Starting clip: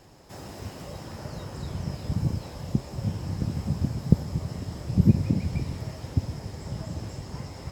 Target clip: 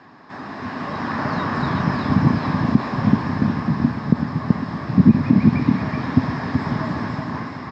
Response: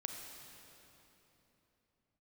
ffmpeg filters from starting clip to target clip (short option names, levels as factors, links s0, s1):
-filter_complex "[0:a]dynaudnorm=f=160:g=11:m=2.82,highpass=190,equalizer=f=250:t=q:w=4:g=8,equalizer=f=360:t=q:w=4:g=-4,equalizer=f=520:t=q:w=4:g=-9,equalizer=f=1100:t=q:w=4:g=10,equalizer=f=1700:t=q:w=4:g=9,equalizer=f=3000:t=q:w=4:g=-7,lowpass=f=3900:w=0.5412,lowpass=f=3900:w=1.3066,asplit=2[s0][s1];[s1]aecho=0:1:380:0.562[s2];[s0][s2]amix=inputs=2:normalize=0,alimiter=level_in=2.66:limit=0.891:release=50:level=0:latency=1,volume=0.891"